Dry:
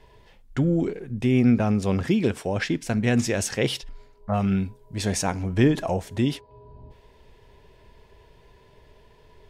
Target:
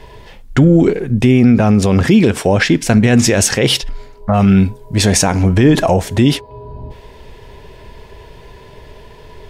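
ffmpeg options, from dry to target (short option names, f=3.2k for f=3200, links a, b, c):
-af "alimiter=level_in=17dB:limit=-1dB:release=50:level=0:latency=1,volume=-1dB"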